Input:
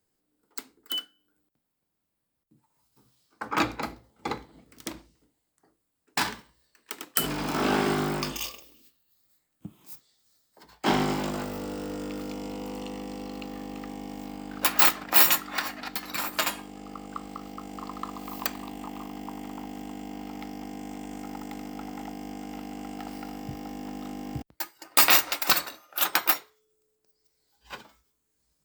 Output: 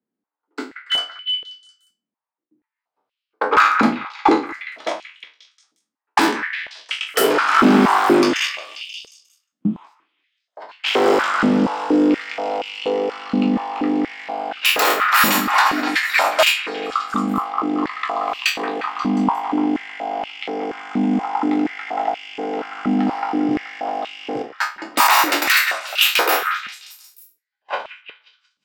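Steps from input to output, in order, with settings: spectral trails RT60 0.31 s; low-pass opened by the level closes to 2700 Hz, open at -21.5 dBFS; gate with hold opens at -47 dBFS; high shelf 3700 Hz -8 dB; in parallel at +1 dB: negative-ratio compressor -27 dBFS, ratio -0.5; on the sum: sine folder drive 10 dB, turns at -4 dBFS; delay with a stepping band-pass 0.178 s, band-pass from 1600 Hz, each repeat 0.7 oct, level -7 dB; stepped high-pass 4.2 Hz 220–2700 Hz; gain -8.5 dB

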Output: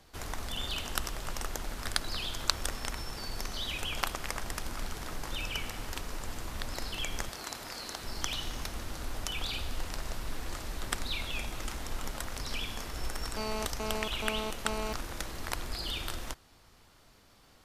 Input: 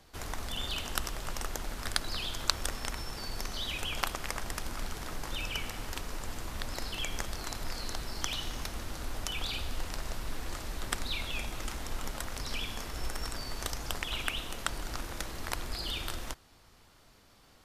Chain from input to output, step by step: 7.29–8.04 HPF 270 Hz 6 dB/oct; 13.37–14.93 GSM buzz -36 dBFS

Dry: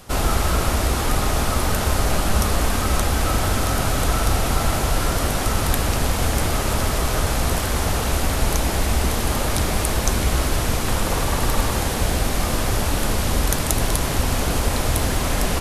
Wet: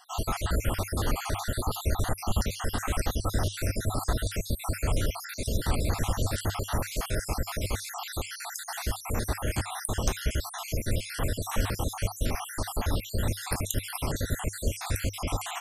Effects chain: random spectral dropouts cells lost 64%; bell 100 Hz +6 dB 0.27 oct; gain -6 dB

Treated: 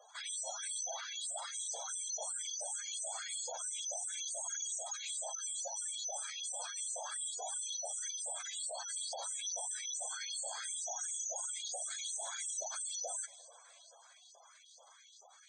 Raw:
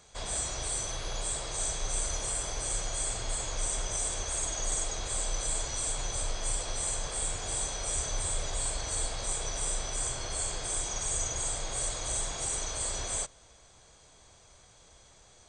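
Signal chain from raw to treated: in parallel at -9 dB: soft clip -35.5 dBFS, distortion -9 dB; on the sum: LFO high-pass saw up 2.3 Hz 540–5500 Hz; on a send at -18.5 dB: reverb RT60 5.5 s, pre-delay 0.112 s; on the sum: dynamic EQ 1100 Hz, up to -6 dB, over -55 dBFS, Q 3.9; spectral gate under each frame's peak -10 dB strong; limiter -28 dBFS, peak gain reduction 10 dB; gain -3.5 dB

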